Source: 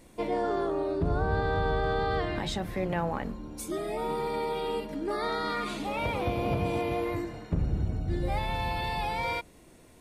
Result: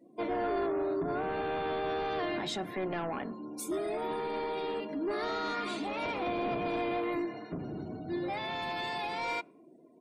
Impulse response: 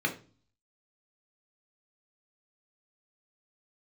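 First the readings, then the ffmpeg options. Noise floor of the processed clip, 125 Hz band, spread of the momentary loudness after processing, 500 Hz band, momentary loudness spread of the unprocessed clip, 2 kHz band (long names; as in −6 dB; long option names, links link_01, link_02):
−57 dBFS, −14.0 dB, 6 LU, −2.5 dB, 5 LU, −3.0 dB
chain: -af "highpass=frequency=160:width=0.5412,highpass=frequency=160:width=1.3066,asoftclip=type=tanh:threshold=-29dB,afftdn=noise_reduction=29:noise_floor=-54,aecho=1:1:2.9:0.41"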